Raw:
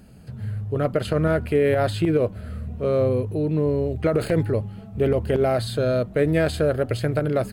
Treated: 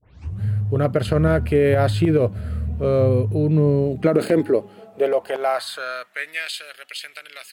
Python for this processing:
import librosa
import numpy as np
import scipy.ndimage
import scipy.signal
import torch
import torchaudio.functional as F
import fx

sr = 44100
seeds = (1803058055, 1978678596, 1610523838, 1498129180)

y = fx.tape_start_head(x, sr, length_s=0.43)
y = fx.filter_sweep_highpass(y, sr, from_hz=82.0, to_hz=2700.0, start_s=3.22, end_s=6.53, q=2.0)
y = y * librosa.db_to_amplitude(2.0)